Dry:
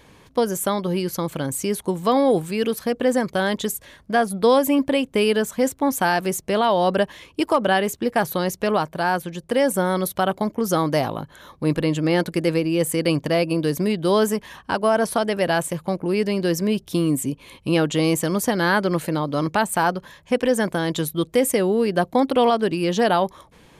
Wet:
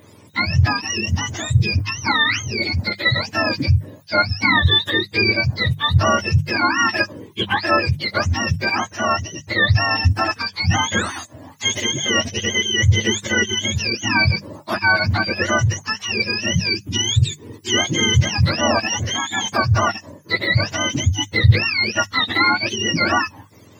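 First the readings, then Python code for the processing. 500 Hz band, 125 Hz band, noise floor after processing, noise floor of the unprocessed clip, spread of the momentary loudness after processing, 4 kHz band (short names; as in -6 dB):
-6.5 dB, +9.5 dB, -46 dBFS, -52 dBFS, 6 LU, +11.5 dB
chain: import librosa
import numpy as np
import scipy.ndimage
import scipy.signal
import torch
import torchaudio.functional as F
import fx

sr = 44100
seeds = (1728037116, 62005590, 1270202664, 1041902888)

y = fx.octave_mirror(x, sr, pivot_hz=1000.0)
y = fx.hum_notches(y, sr, base_hz=50, count=4)
y = y * librosa.db_to_amplitude(4.0)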